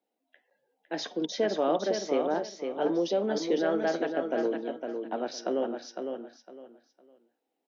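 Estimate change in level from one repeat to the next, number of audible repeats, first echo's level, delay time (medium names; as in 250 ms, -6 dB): -12.5 dB, 3, -6.0 dB, 507 ms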